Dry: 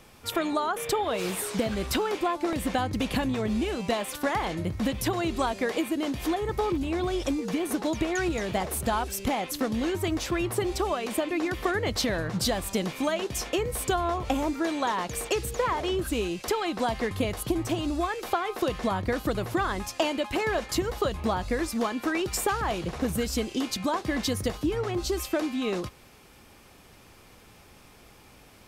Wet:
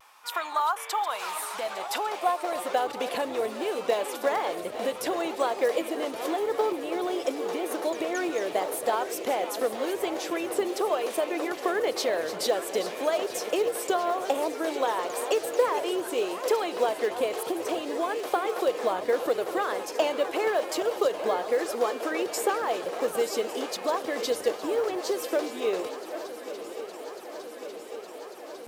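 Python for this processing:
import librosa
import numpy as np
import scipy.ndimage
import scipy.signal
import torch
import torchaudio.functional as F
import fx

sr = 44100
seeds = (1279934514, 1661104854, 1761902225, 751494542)

p1 = fx.reverse_delay(x, sr, ms=486, wet_db=-11.5)
p2 = fx.filter_sweep_highpass(p1, sr, from_hz=960.0, to_hz=480.0, start_s=1.07, end_s=3.2, q=2.7)
p3 = fx.quant_float(p2, sr, bits=4)
p4 = p3 + fx.echo_swing(p3, sr, ms=1148, ratio=3, feedback_pct=79, wet_db=-16, dry=0)
p5 = fx.vibrato(p4, sr, rate_hz=0.93, depth_cents=47.0)
y = F.gain(torch.from_numpy(p5), -3.0).numpy()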